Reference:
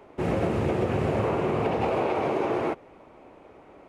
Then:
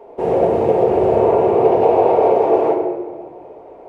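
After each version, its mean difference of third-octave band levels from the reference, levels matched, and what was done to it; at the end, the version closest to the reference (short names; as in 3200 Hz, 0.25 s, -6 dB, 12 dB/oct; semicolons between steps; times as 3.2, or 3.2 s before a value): 7.5 dB: band shelf 570 Hz +14.5 dB; shoebox room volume 1300 m³, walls mixed, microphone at 1.7 m; gain -4 dB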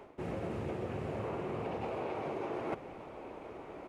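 4.5 dB: reverse; compressor 10:1, threshold -37 dBFS, peak gain reduction 16 dB; reverse; echo 1.189 s -14.5 dB; gain +2 dB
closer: second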